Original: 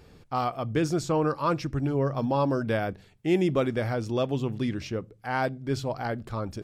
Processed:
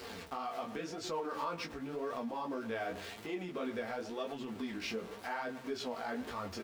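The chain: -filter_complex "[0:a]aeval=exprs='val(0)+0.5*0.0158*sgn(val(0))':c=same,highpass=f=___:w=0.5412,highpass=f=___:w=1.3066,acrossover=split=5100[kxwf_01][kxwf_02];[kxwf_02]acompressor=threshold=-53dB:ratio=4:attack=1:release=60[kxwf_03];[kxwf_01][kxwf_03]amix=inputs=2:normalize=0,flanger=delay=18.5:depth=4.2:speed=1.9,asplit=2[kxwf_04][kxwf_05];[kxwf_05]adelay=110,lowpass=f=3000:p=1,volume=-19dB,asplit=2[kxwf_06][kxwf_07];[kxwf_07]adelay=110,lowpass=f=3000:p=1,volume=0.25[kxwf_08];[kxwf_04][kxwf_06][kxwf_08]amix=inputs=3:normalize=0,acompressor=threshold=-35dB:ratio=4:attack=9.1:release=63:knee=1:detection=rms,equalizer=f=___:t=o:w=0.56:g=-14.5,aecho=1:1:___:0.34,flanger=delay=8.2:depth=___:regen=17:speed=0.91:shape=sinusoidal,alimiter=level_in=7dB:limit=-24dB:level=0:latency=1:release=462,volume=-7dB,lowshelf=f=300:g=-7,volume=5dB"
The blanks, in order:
59, 59, 130, 4.4, 9.8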